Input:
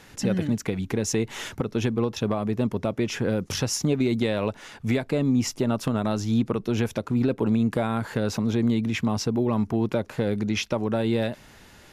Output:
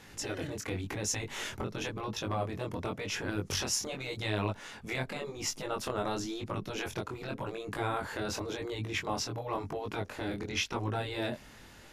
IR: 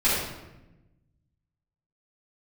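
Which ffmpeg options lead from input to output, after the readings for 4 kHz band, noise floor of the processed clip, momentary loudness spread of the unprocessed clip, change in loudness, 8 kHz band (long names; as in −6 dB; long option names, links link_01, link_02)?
−3.0 dB, −53 dBFS, 4 LU, −10.0 dB, −3.0 dB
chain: -af "afftfilt=real='re*lt(hypot(re,im),0.282)':imag='im*lt(hypot(re,im),0.282)':win_size=1024:overlap=0.75,flanger=delay=19:depth=4.9:speed=0.91"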